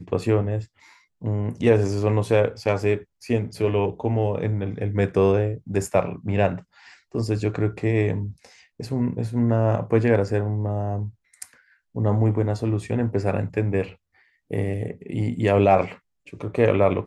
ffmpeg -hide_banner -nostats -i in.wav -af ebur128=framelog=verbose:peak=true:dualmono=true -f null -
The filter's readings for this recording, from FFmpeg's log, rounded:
Integrated loudness:
  I:         -20.4 LUFS
  Threshold: -31.0 LUFS
Loudness range:
  LRA:         2.4 LU
  Threshold: -41.2 LUFS
  LRA low:   -22.6 LUFS
  LRA high:  -20.1 LUFS
True peak:
  Peak:       -4.6 dBFS